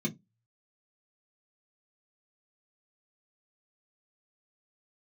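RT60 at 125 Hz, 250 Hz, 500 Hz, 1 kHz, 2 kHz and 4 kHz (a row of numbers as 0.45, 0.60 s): 0.30, 0.25, 0.20, 0.15, 0.15, 0.10 s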